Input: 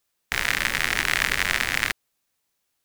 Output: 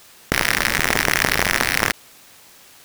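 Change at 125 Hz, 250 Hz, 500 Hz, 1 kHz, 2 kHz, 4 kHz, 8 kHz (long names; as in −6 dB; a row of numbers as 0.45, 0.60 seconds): +8.5, +11.0, +11.5, +7.5, +3.5, +3.5, +7.0 decibels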